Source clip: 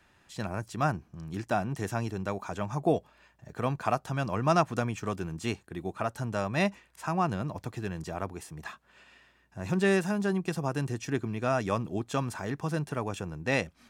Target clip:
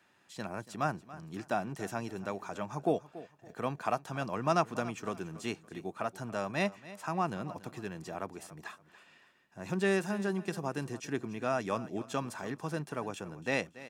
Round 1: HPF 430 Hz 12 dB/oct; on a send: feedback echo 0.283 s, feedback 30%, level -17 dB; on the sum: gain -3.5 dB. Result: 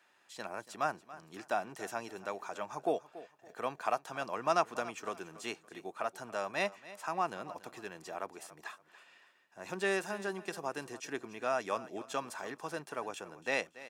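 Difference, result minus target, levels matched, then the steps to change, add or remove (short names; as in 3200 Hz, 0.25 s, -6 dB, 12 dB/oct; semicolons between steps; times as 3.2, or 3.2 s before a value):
125 Hz band -11.5 dB
change: HPF 170 Hz 12 dB/oct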